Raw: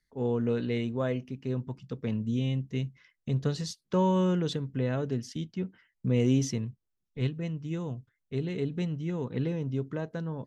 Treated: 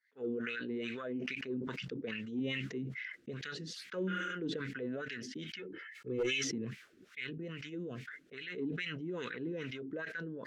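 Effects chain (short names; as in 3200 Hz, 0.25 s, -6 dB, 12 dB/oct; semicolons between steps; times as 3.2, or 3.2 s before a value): wah 2.4 Hz 280–2300 Hz, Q 3.4; EQ curve 120 Hz 0 dB, 210 Hz +4 dB, 450 Hz +4 dB, 890 Hz -11 dB, 1500 Hz +14 dB; 4.1–4.3 spectral repair 220–5200 Hz after; 5.59–6.44 comb 2.3 ms, depth 96%; in parallel at -1 dB: compressor 10:1, threshold -40 dBFS, peak gain reduction 18.5 dB; on the sum: one-sided clip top -21.5 dBFS; dynamic EQ 980 Hz, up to -3 dB, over -43 dBFS, Q 0.8; soft clip -16 dBFS, distortion -32 dB; sustainer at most 21 dB/s; gain -6.5 dB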